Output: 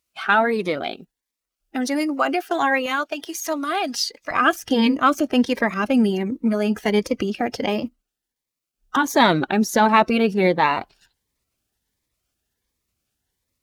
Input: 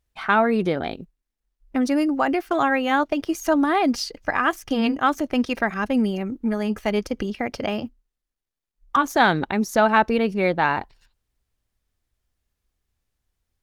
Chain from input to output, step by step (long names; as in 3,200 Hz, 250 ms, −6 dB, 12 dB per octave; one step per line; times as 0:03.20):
spectral magnitudes quantised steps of 15 dB
high-pass filter 690 Hz 6 dB per octave, from 0:02.86 1,500 Hz, from 0:04.31 210 Hz
phaser whose notches keep moving one way rising 1.4 Hz
level +6.5 dB